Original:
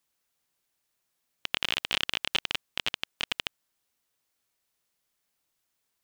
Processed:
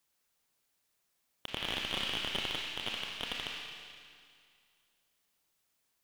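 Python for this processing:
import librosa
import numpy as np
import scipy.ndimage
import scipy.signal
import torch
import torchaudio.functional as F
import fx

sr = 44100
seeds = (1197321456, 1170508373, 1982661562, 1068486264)

y = fx.rev_schroeder(x, sr, rt60_s=2.2, comb_ms=28, drr_db=6.5)
y = fx.slew_limit(y, sr, full_power_hz=140.0)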